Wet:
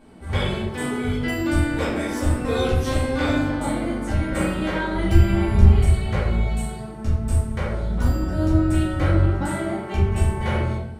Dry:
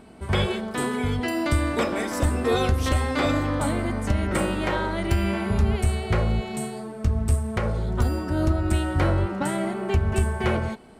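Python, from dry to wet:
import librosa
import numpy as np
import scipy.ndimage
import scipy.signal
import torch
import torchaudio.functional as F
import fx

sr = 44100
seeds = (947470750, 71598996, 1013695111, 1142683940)

y = fx.low_shelf(x, sr, hz=170.0, db=9.0, at=(4.93, 5.66))
y = fx.room_shoebox(y, sr, seeds[0], volume_m3=150.0, walls='mixed', distance_m=2.3)
y = y * 10.0 ** (-8.5 / 20.0)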